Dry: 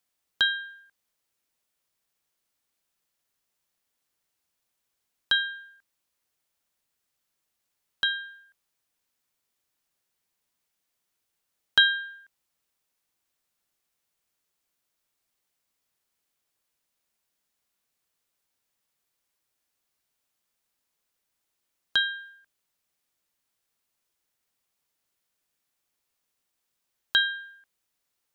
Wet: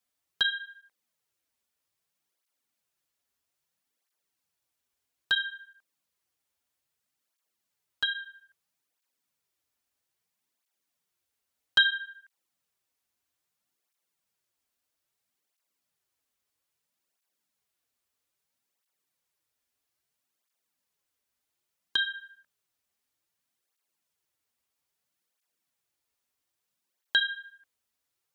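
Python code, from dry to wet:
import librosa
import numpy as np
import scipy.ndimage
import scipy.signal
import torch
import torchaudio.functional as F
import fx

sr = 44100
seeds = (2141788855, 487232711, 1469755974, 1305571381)

y = fx.flanger_cancel(x, sr, hz=0.61, depth_ms=6.7)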